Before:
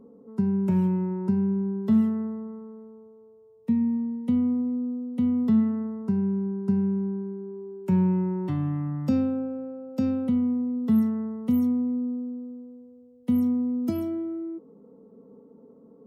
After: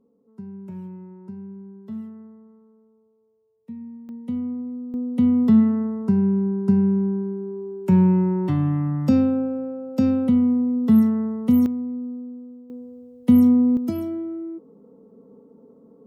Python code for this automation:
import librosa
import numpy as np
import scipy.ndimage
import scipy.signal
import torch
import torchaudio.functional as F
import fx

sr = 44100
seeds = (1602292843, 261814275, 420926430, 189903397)

y = fx.gain(x, sr, db=fx.steps((0.0, -13.0), (4.09, -4.0), (4.94, 6.0), (11.66, -2.0), (12.7, 9.0), (13.77, 1.5)))